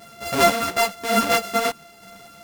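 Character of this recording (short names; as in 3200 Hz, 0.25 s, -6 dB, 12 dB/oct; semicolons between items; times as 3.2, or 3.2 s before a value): a buzz of ramps at a fixed pitch in blocks of 64 samples; tremolo saw down 0.99 Hz, depth 35%; a shimmering, thickened sound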